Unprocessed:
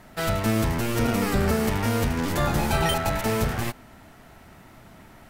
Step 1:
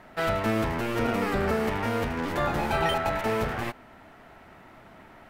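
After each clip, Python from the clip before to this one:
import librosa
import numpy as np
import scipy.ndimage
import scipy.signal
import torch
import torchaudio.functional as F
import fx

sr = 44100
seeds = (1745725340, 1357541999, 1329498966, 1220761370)

y = fx.bass_treble(x, sr, bass_db=-8, treble_db=-13)
y = fx.rider(y, sr, range_db=10, speed_s=2.0)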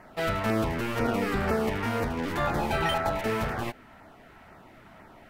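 y = fx.filter_lfo_notch(x, sr, shape='saw_down', hz=2.0, low_hz=280.0, high_hz=3800.0, q=2.0)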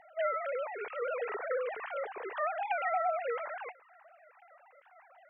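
y = fx.sine_speech(x, sr)
y = F.gain(torch.from_numpy(y), -7.0).numpy()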